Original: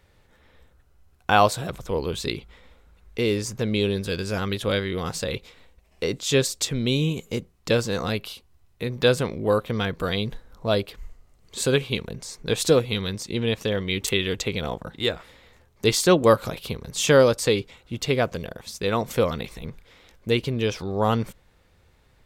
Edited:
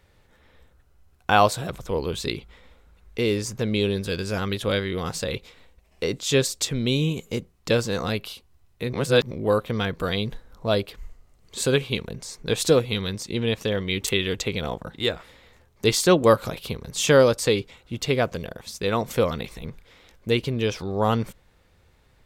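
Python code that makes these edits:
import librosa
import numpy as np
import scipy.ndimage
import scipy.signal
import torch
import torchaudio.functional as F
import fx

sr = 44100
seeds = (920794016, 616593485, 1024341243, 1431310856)

y = fx.edit(x, sr, fx.reverse_span(start_s=8.93, length_s=0.38), tone=tone)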